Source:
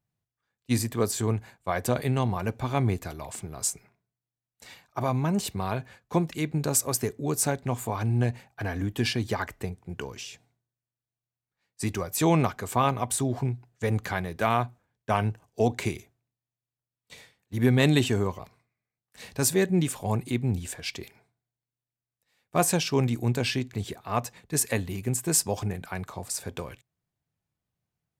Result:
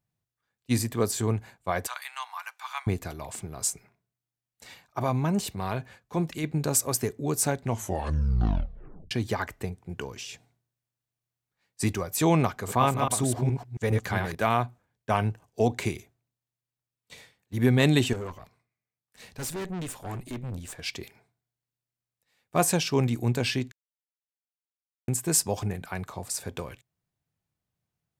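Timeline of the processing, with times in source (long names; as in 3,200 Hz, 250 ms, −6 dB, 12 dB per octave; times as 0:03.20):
0:01.87–0:02.87: Butterworth high-pass 970 Hz
0:05.39–0:06.44: transient designer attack −6 dB, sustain 0 dB
0:07.65: tape stop 1.46 s
0:10.29–0:11.93: clip gain +3 dB
0:12.53–0:14.35: delay that plays each chunk backwards 138 ms, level −4.5 dB
0:18.13–0:20.79: tube saturation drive 31 dB, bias 0.75
0:23.72–0:25.08: silence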